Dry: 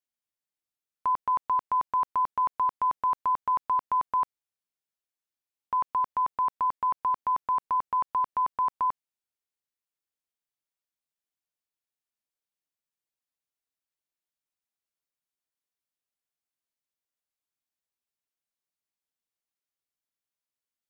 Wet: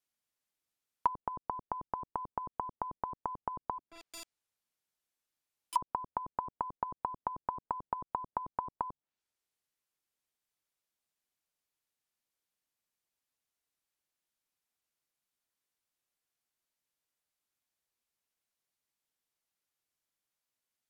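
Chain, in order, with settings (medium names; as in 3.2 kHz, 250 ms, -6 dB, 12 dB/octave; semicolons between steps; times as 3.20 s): 3.78–5.76 s: integer overflow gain 36.5 dB; low-pass that closes with the level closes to 310 Hz, closed at -25.5 dBFS; trim +3.5 dB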